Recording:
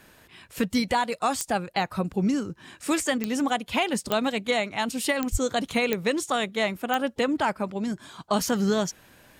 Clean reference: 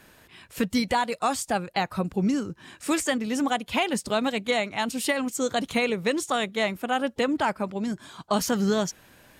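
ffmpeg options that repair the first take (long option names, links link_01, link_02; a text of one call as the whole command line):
ffmpeg -i in.wav -filter_complex "[0:a]adeclick=threshold=4,asplit=3[link_01][link_02][link_03];[link_01]afade=type=out:start_time=5.31:duration=0.02[link_04];[link_02]highpass=frequency=140:width=0.5412,highpass=frequency=140:width=1.3066,afade=type=in:start_time=5.31:duration=0.02,afade=type=out:start_time=5.43:duration=0.02[link_05];[link_03]afade=type=in:start_time=5.43:duration=0.02[link_06];[link_04][link_05][link_06]amix=inputs=3:normalize=0" out.wav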